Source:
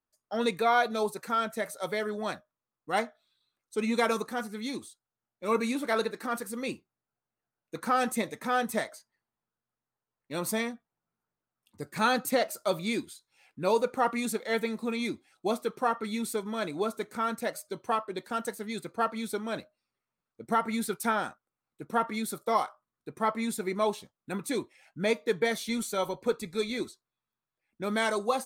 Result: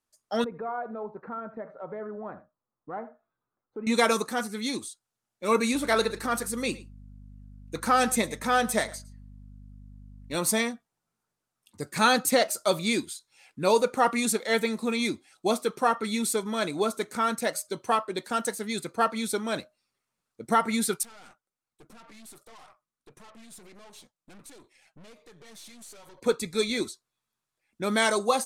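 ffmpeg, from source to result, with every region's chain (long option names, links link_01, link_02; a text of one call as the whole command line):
ffmpeg -i in.wav -filter_complex "[0:a]asettb=1/sr,asplit=3[link_01][link_02][link_03];[link_01]atrim=end=0.444[link_04];[link_02]atrim=start=0.44:end=3.87,asetpts=PTS-STARTPTS,afade=type=in:duration=0.004:curve=qsin,afade=type=out:start_time=3.426:duration=0.004:curve=qsin,lowpass=frequency=1300:width=0.5412,lowpass=frequency=1300:width=1.3066,acompressor=threshold=-44dB:ratio=2:attack=3.2:release=140:knee=1:detection=peak,aecho=1:1:79:0.178,atrim=end_sample=151263[link_05];[link_03]atrim=start=3.866[link_06];[link_04][link_05]acrossfade=duration=0.004:curve1=hsin:curve2=qsin[link_07];[link_07][link_06]acrossfade=duration=0.004:curve1=qsin:curve2=hsin,asettb=1/sr,asplit=3[link_08][link_09][link_10];[link_08]atrim=end=5.744[link_11];[link_09]atrim=start=5.74:end=10.36,asetpts=PTS-STARTPTS,afade=type=in:duration=0.004:curve=qsin,afade=type=out:start_time=4.616:duration=0.004:curve=qsin,aeval=exprs='val(0)+0.00355*(sin(2*PI*50*n/s)+sin(2*PI*2*50*n/s)/2+sin(2*PI*3*50*n/s)/3+sin(2*PI*4*50*n/s)/4+sin(2*PI*5*50*n/s)/5)':channel_layout=same,aecho=1:1:110:0.1,atrim=end_sample=203742[link_12];[link_10]atrim=start=10.356[link_13];[link_11][link_12]acrossfade=duration=0.004:curve1=hsin:curve2=qsin[link_14];[link_14][link_13]acrossfade=duration=0.004:curve1=qsin:curve2=hsin,asettb=1/sr,asplit=3[link_15][link_16][link_17];[link_15]atrim=end=21.034[link_18];[link_16]atrim=start=21.03:end=26.22,asetpts=PTS-STARTPTS,afade=type=in:duration=0.004:curve=qsin,afade=type=out:start_time=5.186:duration=0.004:curve=qsin,acompressor=threshold=-37dB:ratio=10:attack=3.2:release=140:knee=1:detection=peak,flanger=delay=1:depth=5.9:regen=44:speed=1.4:shape=triangular,aeval=exprs='(tanh(447*val(0)+0.7)-tanh(0.7))/447':channel_layout=same[link_19];[link_17]atrim=start=26.216[link_20];[link_18][link_19]acrossfade=duration=0.004:curve1=hsin:curve2=qsin[link_21];[link_21][link_20]acrossfade=duration=0.004:curve1=qsin:curve2=hsin,lowpass=8600,aemphasis=mode=production:type=50kf,volume=3.5dB" out.wav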